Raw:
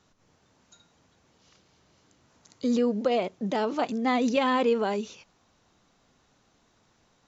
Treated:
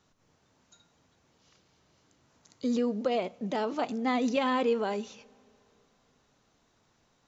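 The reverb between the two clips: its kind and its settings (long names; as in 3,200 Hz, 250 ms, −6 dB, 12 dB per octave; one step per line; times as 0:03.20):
coupled-rooms reverb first 0.48 s, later 3 s, from −15 dB, DRR 18 dB
level −3.5 dB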